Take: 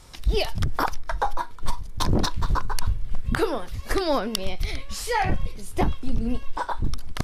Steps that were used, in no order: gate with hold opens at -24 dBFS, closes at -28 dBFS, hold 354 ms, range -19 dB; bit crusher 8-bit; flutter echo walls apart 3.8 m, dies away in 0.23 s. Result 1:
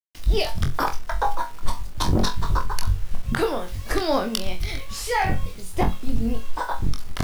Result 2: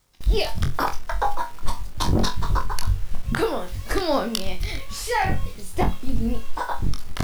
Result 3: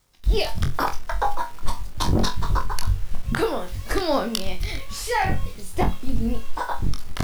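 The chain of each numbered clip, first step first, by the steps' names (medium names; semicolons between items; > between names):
gate with hold > bit crusher > flutter echo; bit crusher > flutter echo > gate with hold; bit crusher > gate with hold > flutter echo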